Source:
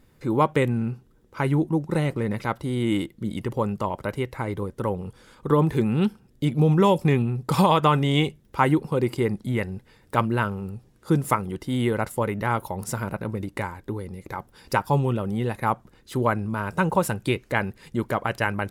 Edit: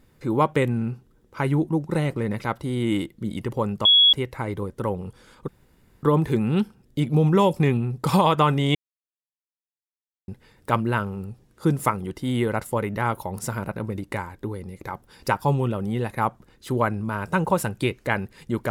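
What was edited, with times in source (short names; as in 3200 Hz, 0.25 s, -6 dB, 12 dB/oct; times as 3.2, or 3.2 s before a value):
3.85–4.13 bleep 3350 Hz -11.5 dBFS
5.48 insert room tone 0.55 s
8.2–9.73 mute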